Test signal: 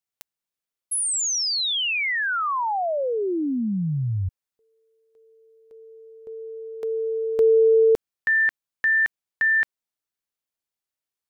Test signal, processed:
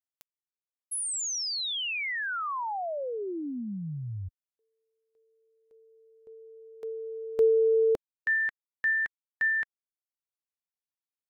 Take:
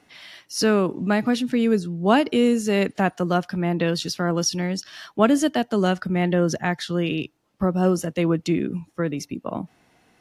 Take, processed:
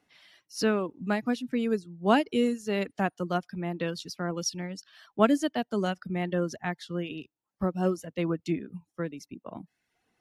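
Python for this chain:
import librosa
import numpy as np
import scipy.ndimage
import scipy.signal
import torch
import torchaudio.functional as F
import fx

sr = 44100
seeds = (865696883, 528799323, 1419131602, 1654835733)

y = fx.dereverb_blind(x, sr, rt60_s=0.64)
y = fx.upward_expand(y, sr, threshold_db=-32.0, expansion=1.5)
y = F.gain(torch.from_numpy(y), -3.5).numpy()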